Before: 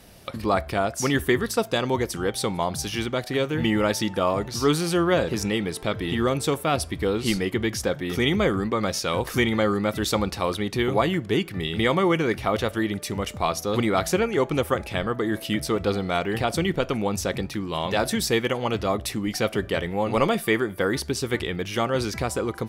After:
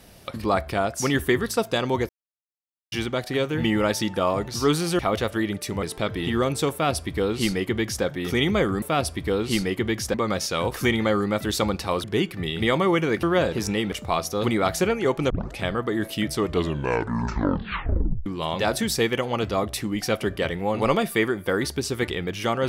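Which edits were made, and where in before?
2.09–2.92 s: mute
4.99–5.68 s: swap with 12.40–13.24 s
6.57–7.89 s: copy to 8.67 s
10.57–11.21 s: delete
14.62 s: tape start 0.27 s
15.65 s: tape stop 1.93 s

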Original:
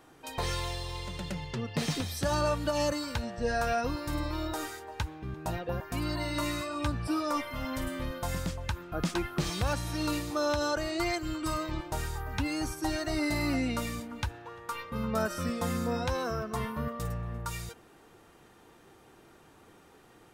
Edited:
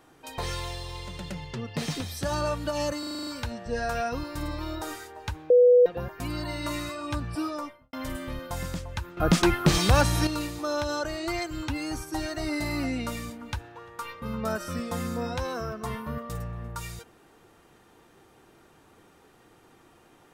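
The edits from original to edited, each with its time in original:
2.99 s: stutter 0.04 s, 8 plays
5.22–5.58 s: bleep 492 Hz -13 dBFS
7.13–7.65 s: studio fade out
8.89–9.99 s: gain +10 dB
11.40–12.38 s: delete

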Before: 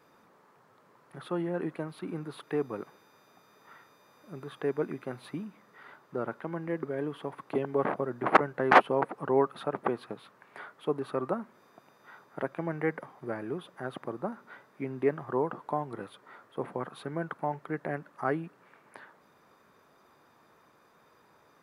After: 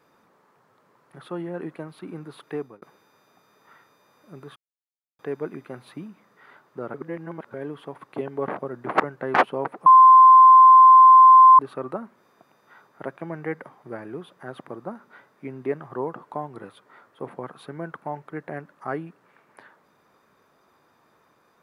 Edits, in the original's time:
2.56–2.82 s: fade out
4.56 s: insert silence 0.63 s
6.31–6.91 s: reverse
9.23–10.96 s: bleep 1.04 kHz -7 dBFS

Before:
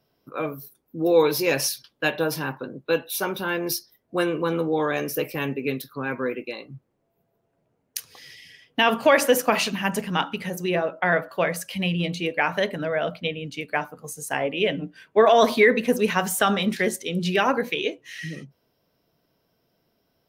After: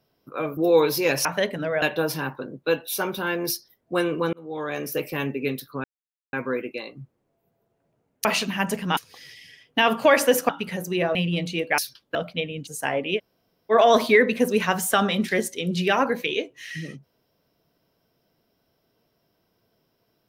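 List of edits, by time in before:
0.57–0.99 s: delete
1.67–2.04 s: swap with 12.45–13.02 s
4.55–5.47 s: fade in equal-power
6.06 s: insert silence 0.49 s
9.50–10.22 s: move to 7.98 s
10.88–11.82 s: delete
13.54–14.15 s: delete
14.65–15.20 s: room tone, crossfade 0.06 s

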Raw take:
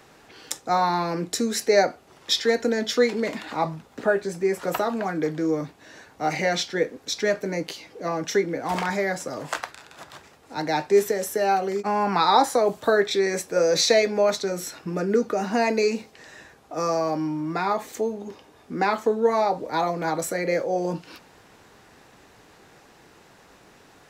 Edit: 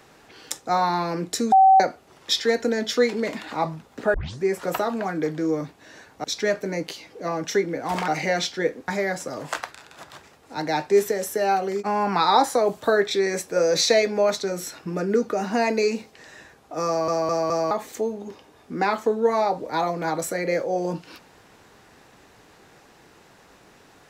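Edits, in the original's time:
1.52–1.80 s: bleep 767 Hz -10 dBFS
4.14 s: tape start 0.29 s
6.24–7.04 s: move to 8.88 s
16.87 s: stutter in place 0.21 s, 4 plays

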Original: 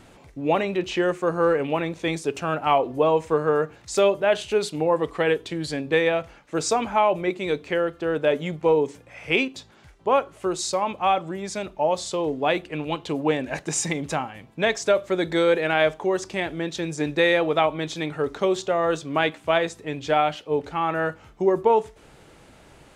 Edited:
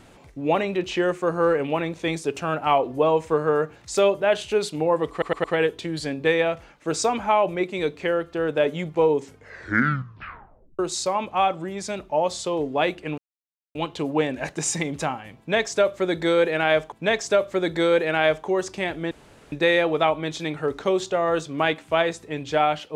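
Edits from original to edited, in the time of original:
5.11 s: stutter 0.11 s, 4 plays
8.87 s: tape stop 1.59 s
12.85 s: insert silence 0.57 s
14.48–16.02 s: loop, 2 plays
16.67–17.08 s: room tone

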